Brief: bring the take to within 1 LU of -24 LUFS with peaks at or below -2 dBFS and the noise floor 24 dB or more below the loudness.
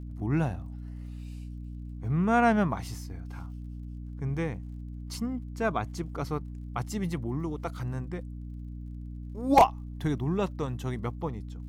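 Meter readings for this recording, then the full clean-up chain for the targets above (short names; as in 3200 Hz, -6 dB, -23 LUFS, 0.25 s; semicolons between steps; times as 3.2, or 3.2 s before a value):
ticks 32/s; hum 60 Hz; harmonics up to 300 Hz; hum level -37 dBFS; loudness -30.0 LUFS; peak -9.5 dBFS; loudness target -24.0 LUFS
-> de-click; notches 60/120/180/240/300 Hz; gain +6 dB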